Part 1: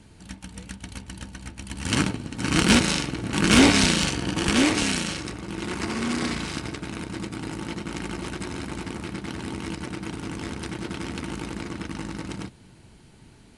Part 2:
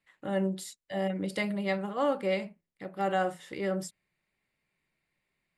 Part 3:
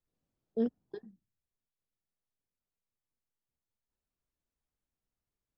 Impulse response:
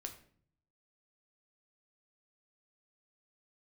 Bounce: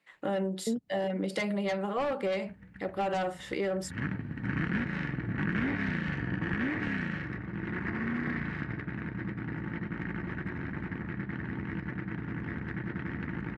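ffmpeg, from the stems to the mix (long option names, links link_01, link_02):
-filter_complex "[0:a]lowpass=frequency=1800:width_type=q:width=6.6,adelay=2050,volume=-12dB,afade=type=in:start_time=3.93:duration=0.46:silence=0.316228[link_01];[1:a]highpass=400,highshelf=frequency=8500:gain=-10.5,aeval=exprs='0.15*(cos(1*acos(clip(val(0)/0.15,-1,1)))-cos(1*PI/2))+0.0668*(cos(5*acos(clip(val(0)/0.15,-1,1)))-cos(5*PI/2))':channel_layout=same,volume=-3dB[link_02];[2:a]adelay=100,volume=-0.5dB[link_03];[link_01][link_02][link_03]amix=inputs=3:normalize=0,equalizer=frequency=140:width=0.67:gain=13,acompressor=threshold=-28dB:ratio=6"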